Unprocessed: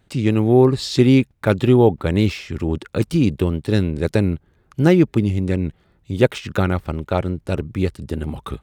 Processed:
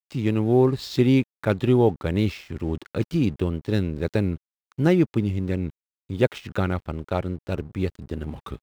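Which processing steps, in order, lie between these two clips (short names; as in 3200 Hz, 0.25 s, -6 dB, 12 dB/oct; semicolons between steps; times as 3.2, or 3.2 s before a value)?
median filter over 5 samples; crossover distortion -43.5 dBFS; gain -5 dB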